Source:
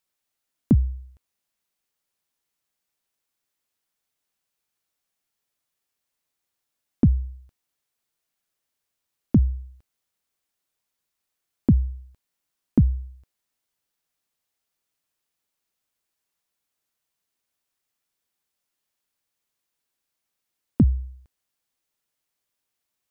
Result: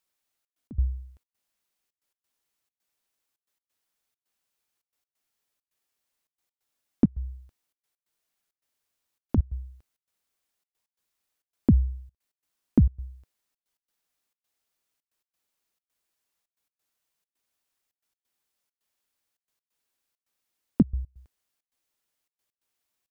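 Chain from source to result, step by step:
parametric band 140 Hz −4 dB 0.78 octaves
0:07.07–0:09.38: downward compressor, threshold −23 dBFS, peak gain reduction 9 dB
gate pattern "xxxx.x.xxxx.x" 134 BPM −24 dB

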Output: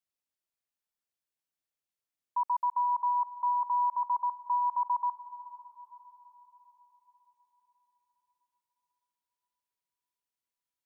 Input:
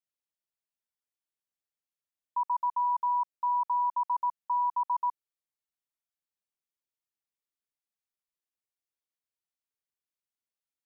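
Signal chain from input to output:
feedback delay with all-pass diffusion 475 ms, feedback 50%, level −16 dB

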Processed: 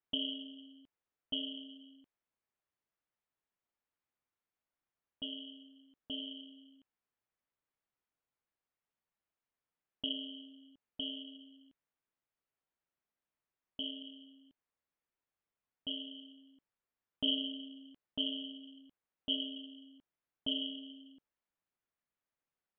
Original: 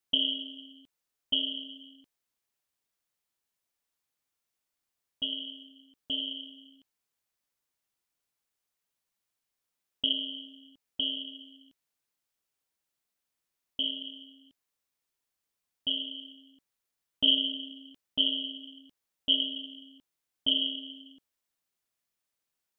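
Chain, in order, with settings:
low-pass filter 2,100 Hz 12 dB per octave
level −2.5 dB

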